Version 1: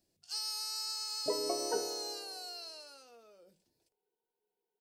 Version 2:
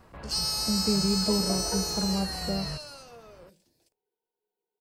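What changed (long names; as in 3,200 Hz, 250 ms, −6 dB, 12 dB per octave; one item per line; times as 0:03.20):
speech: unmuted
first sound +9.0 dB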